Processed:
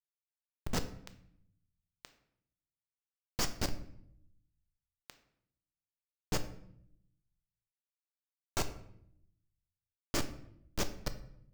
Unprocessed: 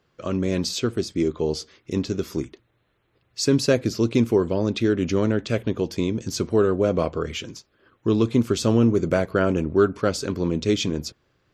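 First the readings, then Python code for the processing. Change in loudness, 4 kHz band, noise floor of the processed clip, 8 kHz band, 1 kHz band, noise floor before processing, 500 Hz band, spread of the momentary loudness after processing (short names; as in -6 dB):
-16.5 dB, -13.5 dB, under -85 dBFS, -10.5 dB, -14.5 dB, -68 dBFS, -26.5 dB, 22 LU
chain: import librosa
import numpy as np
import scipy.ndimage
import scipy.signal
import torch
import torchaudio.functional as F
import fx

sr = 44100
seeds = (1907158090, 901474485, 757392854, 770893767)

y = scipy.signal.sosfilt(scipy.signal.cheby2(4, 60, [250.0, 1700.0], 'bandstop', fs=sr, output='sos'), x)
y = fx.harmonic_tremolo(y, sr, hz=3.1, depth_pct=70, crossover_hz=520.0)
y = fx.schmitt(y, sr, flips_db=-28.5)
y = fx.room_shoebox(y, sr, seeds[0], volume_m3=160.0, walls='mixed', distance_m=0.37)
y = F.gain(torch.from_numpy(y), 10.0).numpy()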